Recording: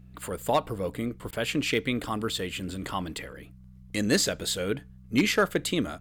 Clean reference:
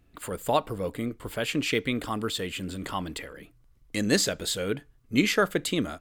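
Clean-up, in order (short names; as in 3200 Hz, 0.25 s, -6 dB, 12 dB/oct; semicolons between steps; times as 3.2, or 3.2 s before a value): clip repair -14 dBFS; de-hum 62.9 Hz, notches 3; interpolate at 1.31, 16 ms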